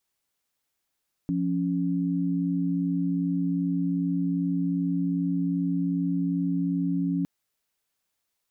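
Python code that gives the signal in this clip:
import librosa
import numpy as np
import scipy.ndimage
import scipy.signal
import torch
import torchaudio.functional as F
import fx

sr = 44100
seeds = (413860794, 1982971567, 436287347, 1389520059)

y = fx.chord(sr, length_s=5.96, notes=(53, 61), wave='sine', level_db=-26.0)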